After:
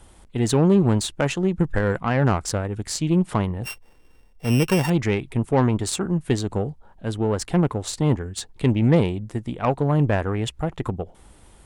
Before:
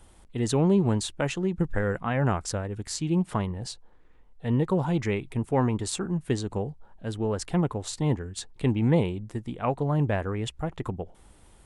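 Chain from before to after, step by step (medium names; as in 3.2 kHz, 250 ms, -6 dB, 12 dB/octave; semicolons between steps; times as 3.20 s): 3.64–4.90 s: sorted samples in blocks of 16 samples; Chebyshev shaper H 8 -28 dB, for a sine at -10 dBFS; trim +5 dB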